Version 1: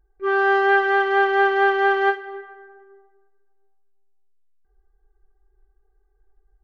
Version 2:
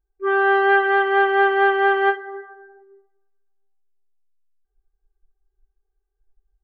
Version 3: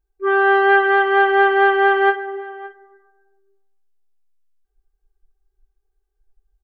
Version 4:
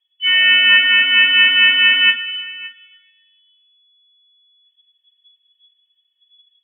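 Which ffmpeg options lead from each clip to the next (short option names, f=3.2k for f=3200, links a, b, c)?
-af "afftdn=nr=14:nf=-37,volume=1dB"
-filter_complex "[0:a]asplit=2[a][b];[b]adelay=565.6,volume=-18dB,highshelf=f=4k:g=-12.7[c];[a][c]amix=inputs=2:normalize=0,volume=2.5dB"
-af "lowpass=f=2.9k:t=q:w=0.5098,lowpass=f=2.9k:t=q:w=0.6013,lowpass=f=2.9k:t=q:w=0.9,lowpass=f=2.9k:t=q:w=2.563,afreqshift=-3400,volume=2.5dB"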